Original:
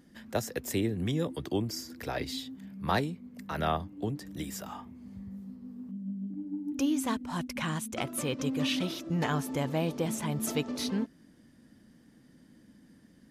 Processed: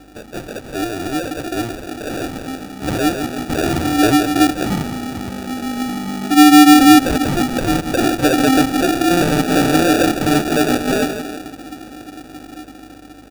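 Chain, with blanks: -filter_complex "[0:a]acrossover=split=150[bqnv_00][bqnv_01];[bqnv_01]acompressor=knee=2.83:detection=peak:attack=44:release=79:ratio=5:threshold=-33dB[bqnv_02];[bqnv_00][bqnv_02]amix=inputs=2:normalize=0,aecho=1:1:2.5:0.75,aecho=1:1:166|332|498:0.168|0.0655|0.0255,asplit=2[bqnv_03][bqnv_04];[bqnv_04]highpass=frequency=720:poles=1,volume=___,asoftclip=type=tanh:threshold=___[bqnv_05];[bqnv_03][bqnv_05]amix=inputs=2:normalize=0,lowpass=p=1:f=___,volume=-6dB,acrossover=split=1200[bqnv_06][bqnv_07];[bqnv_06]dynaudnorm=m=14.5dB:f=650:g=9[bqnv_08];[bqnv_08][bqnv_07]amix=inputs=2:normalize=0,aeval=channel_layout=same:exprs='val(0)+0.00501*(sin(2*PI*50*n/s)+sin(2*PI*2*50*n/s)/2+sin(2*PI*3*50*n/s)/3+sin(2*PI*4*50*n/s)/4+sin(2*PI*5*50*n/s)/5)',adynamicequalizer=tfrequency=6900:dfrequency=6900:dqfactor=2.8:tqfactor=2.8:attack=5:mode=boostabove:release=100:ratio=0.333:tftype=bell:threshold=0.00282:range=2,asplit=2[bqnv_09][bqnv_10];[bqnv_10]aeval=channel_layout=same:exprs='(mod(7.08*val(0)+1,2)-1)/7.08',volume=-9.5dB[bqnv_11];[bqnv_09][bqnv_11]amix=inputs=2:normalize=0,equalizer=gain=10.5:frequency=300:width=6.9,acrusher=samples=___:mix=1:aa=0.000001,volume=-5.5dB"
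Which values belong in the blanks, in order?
30dB, -16dB, 2300, 42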